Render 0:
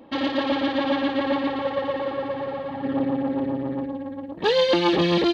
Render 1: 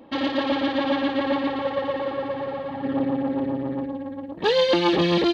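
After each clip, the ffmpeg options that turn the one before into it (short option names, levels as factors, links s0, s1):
-af anull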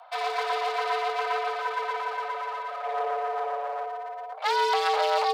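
-af "aeval=exprs='clip(val(0),-1,0.0224)':c=same,afreqshift=440,volume=0.841"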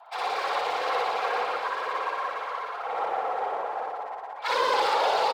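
-af "afftfilt=real='hypot(re,im)*cos(2*PI*random(0))':imag='hypot(re,im)*sin(2*PI*random(1))':win_size=512:overlap=0.75,afreqshift=64,aecho=1:1:61.22|180.8:1|0.316,volume=1.41"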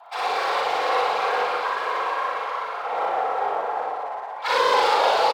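-filter_complex "[0:a]asplit=2[s0][s1];[s1]adelay=39,volume=0.708[s2];[s0][s2]amix=inputs=2:normalize=0,volume=1.41"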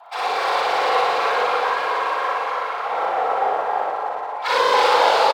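-af "aecho=1:1:289:0.631,volume=1.26"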